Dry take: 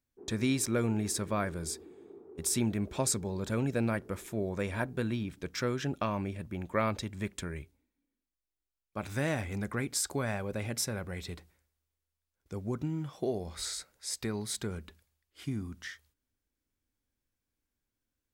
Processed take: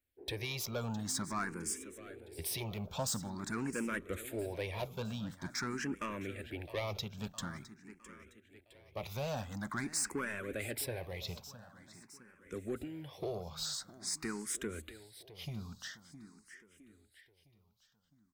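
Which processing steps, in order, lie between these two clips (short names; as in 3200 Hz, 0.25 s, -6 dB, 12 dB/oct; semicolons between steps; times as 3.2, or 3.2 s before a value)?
bell 14000 Hz +6 dB 0.35 oct; harmonic-percussive split harmonic -7 dB; bell 2100 Hz +3 dB 2.2 oct; soft clip -31 dBFS, distortion -10 dB; feedback echo 0.661 s, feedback 52%, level -15 dB; endless phaser +0.47 Hz; gain +2.5 dB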